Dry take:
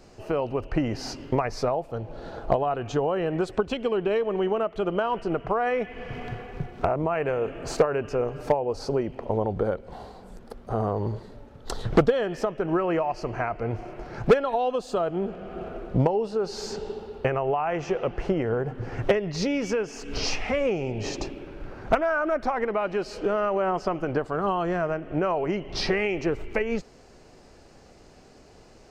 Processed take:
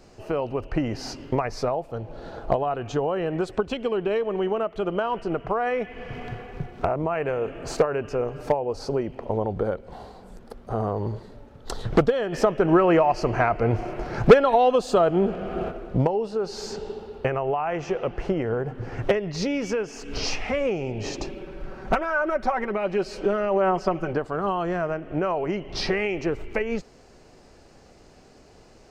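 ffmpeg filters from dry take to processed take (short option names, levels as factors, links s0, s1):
-filter_complex "[0:a]asplit=3[s0][s1][s2];[s0]afade=t=out:st=12.32:d=0.02[s3];[s1]acontrast=81,afade=t=in:st=12.32:d=0.02,afade=t=out:st=15.7:d=0.02[s4];[s2]afade=t=in:st=15.7:d=0.02[s5];[s3][s4][s5]amix=inputs=3:normalize=0,asettb=1/sr,asplit=3[s6][s7][s8];[s6]atrim=end=21.274[s9];[s7]atrim=start=21.27:end=24.13,asetpts=PTS-STARTPTS,afade=t=in:d=0.004:c=qsin,afade=t=out:st=2.856:d=0.004:c=qsin,aecho=1:1:5.3:0.63,atrim=end_sample=126126[s10];[s8]atrim=start=24.126[s11];[s9][s10]acrossfade=d=0.004:c1=hsin:c2=qsin[s12];[s12][s11]acrossfade=d=0.004:c1=qsin:c2=hsin"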